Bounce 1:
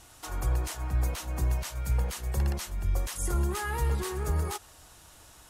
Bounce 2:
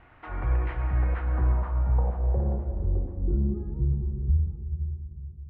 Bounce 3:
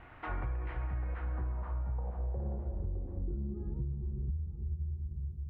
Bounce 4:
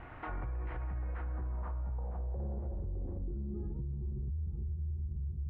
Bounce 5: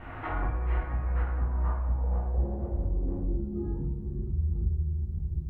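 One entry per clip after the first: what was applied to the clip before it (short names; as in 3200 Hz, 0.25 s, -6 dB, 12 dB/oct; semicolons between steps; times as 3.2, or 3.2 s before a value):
low-pass sweep 2100 Hz -> 100 Hz, 0.95–4.46; air absorption 500 m; on a send at -6 dB: reverb RT60 2.9 s, pre-delay 24 ms; on the sum: gain +1.5 dB
compressor 12:1, threshold -34 dBFS, peak gain reduction 16 dB; gain +1.5 dB
high shelf 2400 Hz -8.5 dB; limiter -37.5 dBFS, peak gain reduction 11 dB; gain +5.5 dB
plate-style reverb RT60 0.72 s, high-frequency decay 0.8×, DRR -6.5 dB; gain +1.5 dB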